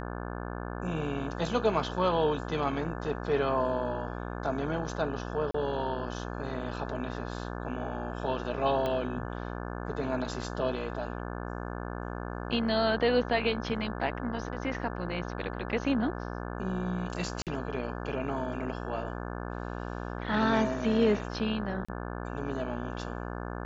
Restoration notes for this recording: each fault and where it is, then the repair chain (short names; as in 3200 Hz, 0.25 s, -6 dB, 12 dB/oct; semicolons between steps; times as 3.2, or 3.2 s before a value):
buzz 60 Hz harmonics 29 -37 dBFS
5.51–5.54 gap 34 ms
8.86 pop -19 dBFS
17.42–17.47 gap 47 ms
21.85–21.89 gap 35 ms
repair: de-click; de-hum 60 Hz, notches 29; interpolate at 5.51, 34 ms; interpolate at 17.42, 47 ms; interpolate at 21.85, 35 ms